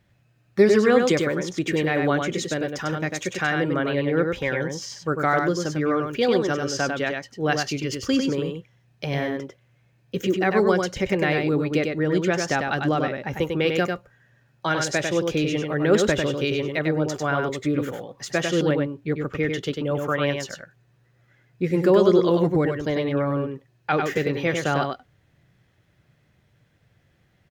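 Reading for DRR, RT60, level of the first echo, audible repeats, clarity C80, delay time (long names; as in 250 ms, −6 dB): no reverb audible, no reverb audible, −4.5 dB, 1, no reverb audible, 98 ms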